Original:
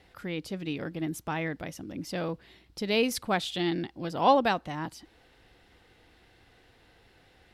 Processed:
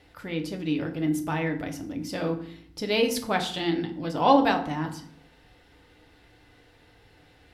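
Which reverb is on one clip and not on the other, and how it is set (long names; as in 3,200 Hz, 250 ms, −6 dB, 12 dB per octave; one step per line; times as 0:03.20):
feedback delay network reverb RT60 0.59 s, low-frequency decay 1.55×, high-frequency decay 0.65×, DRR 3.5 dB
level +1 dB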